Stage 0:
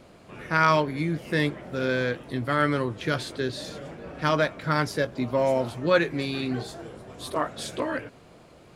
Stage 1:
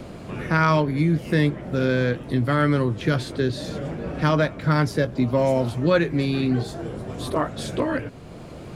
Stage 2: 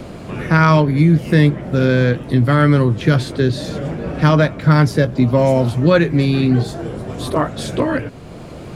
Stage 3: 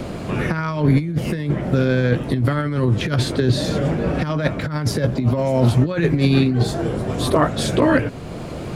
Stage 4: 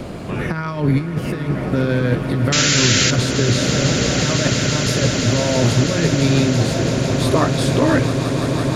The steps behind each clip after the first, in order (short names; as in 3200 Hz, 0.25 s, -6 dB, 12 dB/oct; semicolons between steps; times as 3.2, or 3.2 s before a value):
low shelf 310 Hz +10.5 dB; three-band squash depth 40%
dynamic EQ 140 Hz, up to +4 dB, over -31 dBFS, Q 1.1; gain +5.5 dB
negative-ratio compressor -16 dBFS, ratio -0.5
painted sound noise, 2.52–3.11, 1300–7400 Hz -16 dBFS; swelling echo 0.167 s, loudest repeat 8, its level -12 dB; gain -1 dB